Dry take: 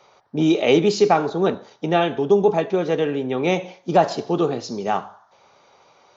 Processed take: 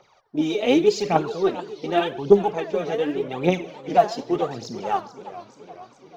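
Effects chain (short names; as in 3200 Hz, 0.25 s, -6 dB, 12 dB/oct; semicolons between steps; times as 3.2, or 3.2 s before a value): phaser 0.86 Hz, delay 4.9 ms, feedback 72%; warbling echo 0.431 s, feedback 60%, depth 207 cents, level -15 dB; gain -6.5 dB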